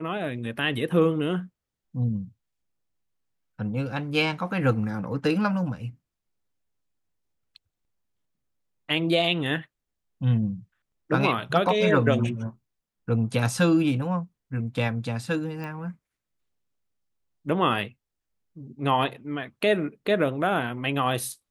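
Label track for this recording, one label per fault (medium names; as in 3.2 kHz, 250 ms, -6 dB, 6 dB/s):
15.640000	15.640000	pop -24 dBFS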